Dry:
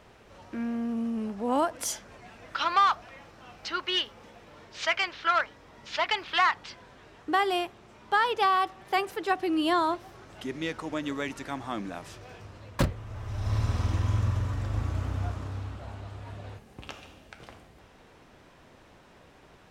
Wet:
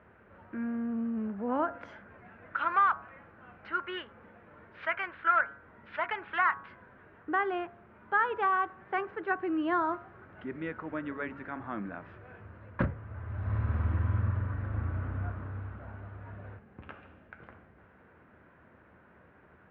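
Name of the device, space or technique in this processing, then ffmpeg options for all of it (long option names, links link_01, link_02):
bass cabinet: -af "highpass=71,equalizer=frequency=78:width_type=q:width=4:gain=7,equalizer=frequency=200:width_type=q:width=4:gain=4,equalizer=frequency=780:width_type=q:width=4:gain=-3,equalizer=frequency=1500:width_type=q:width=4:gain=7,lowpass=frequency=2100:width=0.5412,lowpass=frequency=2100:width=1.3066,bandreject=frequency=139:width_type=h:width=4,bandreject=frequency=278:width_type=h:width=4,bandreject=frequency=417:width_type=h:width=4,bandreject=frequency=556:width_type=h:width=4,bandreject=frequency=695:width_type=h:width=4,bandreject=frequency=834:width_type=h:width=4,bandreject=frequency=973:width_type=h:width=4,bandreject=frequency=1112:width_type=h:width=4,bandreject=frequency=1251:width_type=h:width=4,bandreject=frequency=1390:width_type=h:width=4,bandreject=frequency=1529:width_type=h:width=4,bandreject=frequency=1668:width_type=h:width=4,volume=-4dB"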